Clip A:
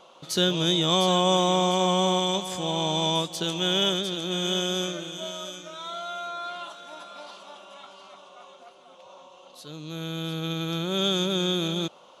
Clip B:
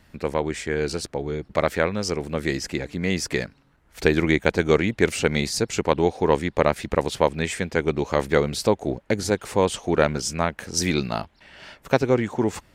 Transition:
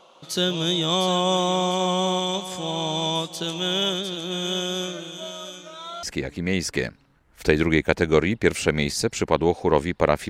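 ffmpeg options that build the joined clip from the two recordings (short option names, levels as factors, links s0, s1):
-filter_complex "[0:a]apad=whole_dur=10.29,atrim=end=10.29,atrim=end=6.032[s0];[1:a]atrim=start=2.598:end=6.86[s1];[s0][s1]acrossfade=d=0.004:c1=hsin:c2=hsin"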